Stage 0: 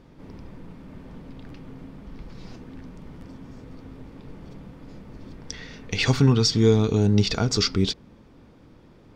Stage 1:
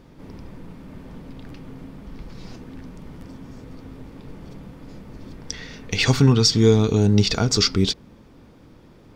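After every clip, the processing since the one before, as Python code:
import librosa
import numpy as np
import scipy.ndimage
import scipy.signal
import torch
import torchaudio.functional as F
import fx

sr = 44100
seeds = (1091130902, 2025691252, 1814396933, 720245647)

y = fx.high_shelf(x, sr, hz=8000.0, db=7.5)
y = y * librosa.db_to_amplitude(2.5)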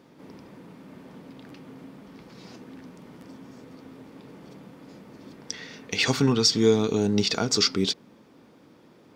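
y = scipy.signal.sosfilt(scipy.signal.butter(2, 200.0, 'highpass', fs=sr, output='sos'), x)
y = y * librosa.db_to_amplitude(-2.5)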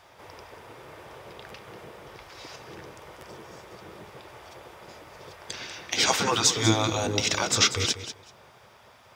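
y = fx.spec_gate(x, sr, threshold_db=-10, keep='weak')
y = fx.notch(y, sr, hz=4300.0, q=15.0)
y = fx.echo_feedback(y, sr, ms=192, feedback_pct=17, wet_db=-11.5)
y = y * librosa.db_to_amplitude(7.5)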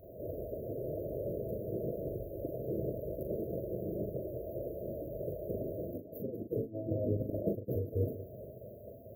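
y = fx.over_compress(x, sr, threshold_db=-32.0, ratio=-0.5)
y = fx.brickwall_bandstop(y, sr, low_hz=680.0, high_hz=13000.0)
y = fx.doubler(y, sr, ms=40.0, db=-6.0)
y = y * librosa.db_to_amplitude(2.5)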